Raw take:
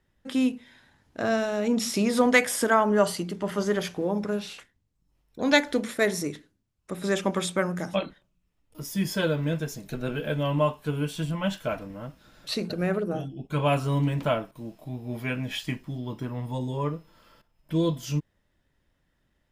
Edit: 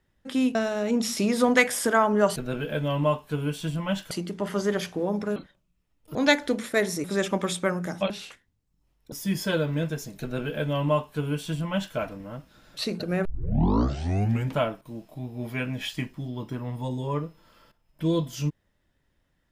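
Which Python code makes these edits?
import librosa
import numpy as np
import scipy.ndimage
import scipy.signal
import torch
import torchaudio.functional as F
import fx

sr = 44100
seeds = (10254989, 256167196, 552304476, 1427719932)

y = fx.edit(x, sr, fx.cut(start_s=0.55, length_s=0.77),
    fx.swap(start_s=4.38, length_s=1.02, other_s=8.03, other_length_s=0.79),
    fx.cut(start_s=6.29, length_s=0.68),
    fx.duplicate(start_s=9.91, length_s=1.75, to_s=3.13),
    fx.tape_start(start_s=12.95, length_s=1.33), tone=tone)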